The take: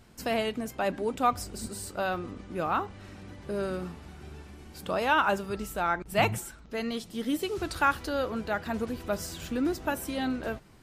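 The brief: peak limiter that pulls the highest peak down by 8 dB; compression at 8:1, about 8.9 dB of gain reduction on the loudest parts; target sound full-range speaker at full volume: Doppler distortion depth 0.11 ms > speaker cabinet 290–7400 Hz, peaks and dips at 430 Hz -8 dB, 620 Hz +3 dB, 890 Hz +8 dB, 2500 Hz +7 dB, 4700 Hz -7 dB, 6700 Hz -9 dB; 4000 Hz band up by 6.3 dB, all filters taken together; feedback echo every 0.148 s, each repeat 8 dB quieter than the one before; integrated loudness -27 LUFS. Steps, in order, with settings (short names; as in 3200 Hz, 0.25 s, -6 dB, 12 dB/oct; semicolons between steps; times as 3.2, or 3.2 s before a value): bell 4000 Hz +8.5 dB; compressor 8:1, threshold -27 dBFS; limiter -25 dBFS; feedback echo 0.148 s, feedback 40%, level -8 dB; Doppler distortion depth 0.11 ms; speaker cabinet 290–7400 Hz, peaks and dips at 430 Hz -8 dB, 620 Hz +3 dB, 890 Hz +8 dB, 2500 Hz +7 dB, 4700 Hz -7 dB, 6700 Hz -9 dB; gain +8 dB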